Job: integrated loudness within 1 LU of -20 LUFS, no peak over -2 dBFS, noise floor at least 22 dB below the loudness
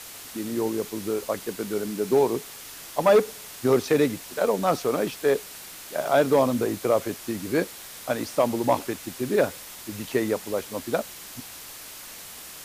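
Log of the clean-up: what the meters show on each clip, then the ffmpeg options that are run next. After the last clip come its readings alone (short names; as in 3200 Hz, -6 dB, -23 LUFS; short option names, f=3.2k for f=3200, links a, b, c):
noise floor -42 dBFS; noise floor target -48 dBFS; loudness -25.5 LUFS; peak -10.0 dBFS; loudness target -20.0 LUFS
-> -af "afftdn=nr=6:nf=-42"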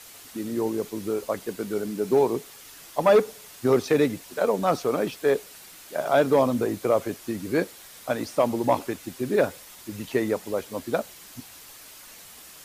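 noise floor -47 dBFS; noise floor target -48 dBFS
-> -af "afftdn=nr=6:nf=-47"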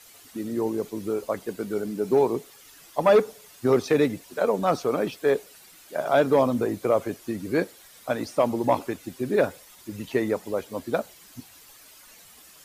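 noise floor -51 dBFS; loudness -25.5 LUFS; peak -10.5 dBFS; loudness target -20.0 LUFS
-> -af "volume=5.5dB"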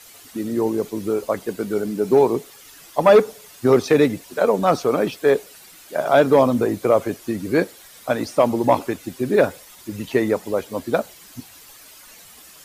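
loudness -20.0 LUFS; peak -5.0 dBFS; noise floor -46 dBFS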